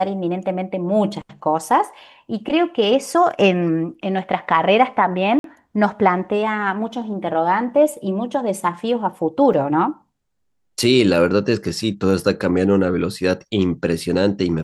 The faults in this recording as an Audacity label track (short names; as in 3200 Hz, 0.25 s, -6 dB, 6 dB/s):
5.390000	5.440000	gap 52 ms
9.530000	9.530000	gap 4.9 ms